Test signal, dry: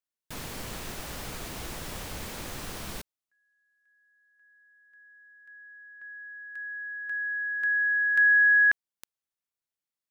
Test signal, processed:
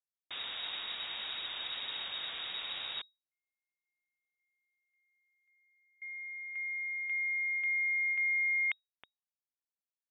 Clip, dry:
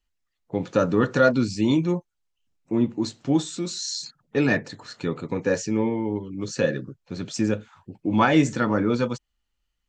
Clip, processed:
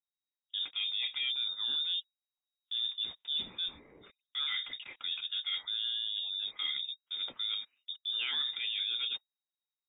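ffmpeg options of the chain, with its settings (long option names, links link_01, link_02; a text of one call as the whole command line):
ffmpeg -i in.wav -af "agate=range=-23dB:threshold=-46dB:ratio=16:release=51:detection=rms,areverse,acompressor=threshold=-30dB:ratio=6:attack=0.9:release=178:knee=6:detection=peak,areverse,lowpass=frequency=3200:width_type=q:width=0.5098,lowpass=frequency=3200:width_type=q:width=0.6013,lowpass=frequency=3200:width_type=q:width=0.9,lowpass=frequency=3200:width_type=q:width=2.563,afreqshift=-3800" out.wav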